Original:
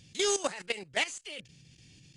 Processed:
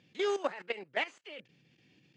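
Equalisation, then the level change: BPF 260–2100 Hz; 0.0 dB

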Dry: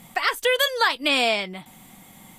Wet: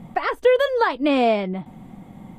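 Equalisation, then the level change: LPF 2600 Hz 6 dB/oct; tilt shelf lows +9.5 dB, about 1100 Hz; +1.5 dB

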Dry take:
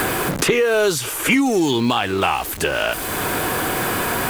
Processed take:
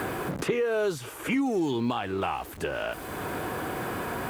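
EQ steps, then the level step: HPF 43 Hz; high shelf 2200 Hz -11 dB; -8.5 dB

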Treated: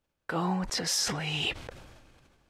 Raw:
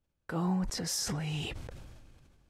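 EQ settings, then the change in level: dynamic EQ 3200 Hz, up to +5 dB, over -52 dBFS, Q 0.95; low shelf 270 Hz -12 dB; high shelf 4900 Hz -7 dB; +7.5 dB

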